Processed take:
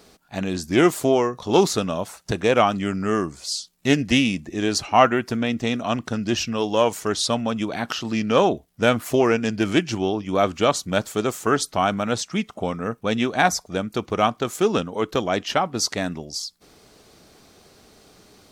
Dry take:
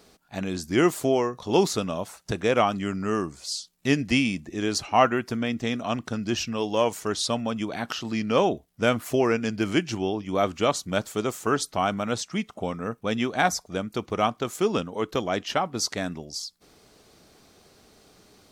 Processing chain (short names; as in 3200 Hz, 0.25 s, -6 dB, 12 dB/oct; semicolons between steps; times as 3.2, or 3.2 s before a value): Doppler distortion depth 0.11 ms; gain +4 dB